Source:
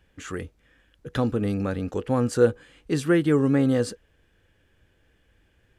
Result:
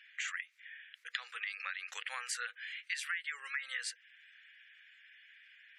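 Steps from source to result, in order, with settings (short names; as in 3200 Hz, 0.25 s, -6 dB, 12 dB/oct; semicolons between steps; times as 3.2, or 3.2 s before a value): ladder high-pass 1800 Hz, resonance 60%; spectral gate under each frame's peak -25 dB strong; compressor 6:1, threshold -53 dBFS, peak gain reduction 19 dB; gain +16.5 dB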